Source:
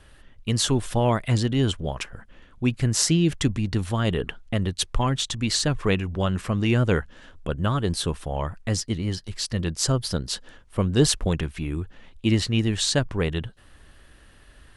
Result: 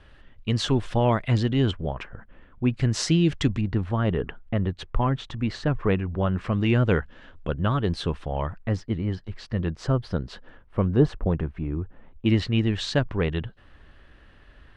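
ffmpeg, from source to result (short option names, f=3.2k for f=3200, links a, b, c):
-af "asetnsamples=n=441:p=0,asendcmd='1.71 lowpass f 2000;2.74 lowpass f 4400;3.61 lowpass f 1800;6.41 lowpass f 3300;8.58 lowpass f 1900;10.96 lowpass f 1200;12.26 lowpass f 3100',lowpass=3.7k"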